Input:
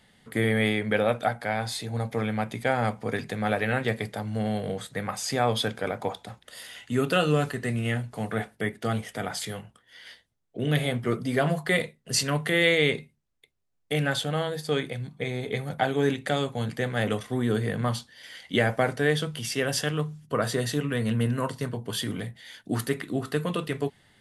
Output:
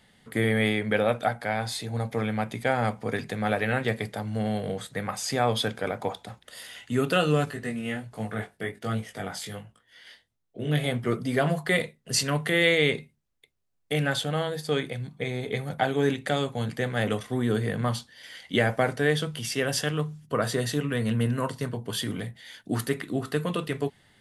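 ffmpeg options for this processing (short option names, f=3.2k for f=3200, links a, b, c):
-filter_complex "[0:a]asettb=1/sr,asplit=3[a][b][c];[a]atrim=end=7.454[d];[b]atrim=start=7.45:end=10.84,asetpts=PTS-STARTPTS,afade=t=in:d=0.004:c=qsin,afade=t=out:st=3.386:d=0.004:c=qsin,flanger=delay=18:depth=3.5:speed=1.3[e];[c]atrim=start=10.836[f];[d][e]acrossfade=d=0.004:c1=hsin:c2=qsin[g];[g][f]acrossfade=d=0.004:c1=qsin:c2=hsin"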